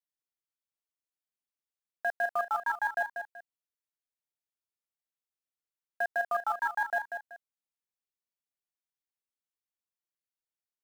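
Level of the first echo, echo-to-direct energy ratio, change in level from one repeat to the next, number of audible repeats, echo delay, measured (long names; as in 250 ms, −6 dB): −7.0 dB, −6.5 dB, −10.5 dB, 2, 190 ms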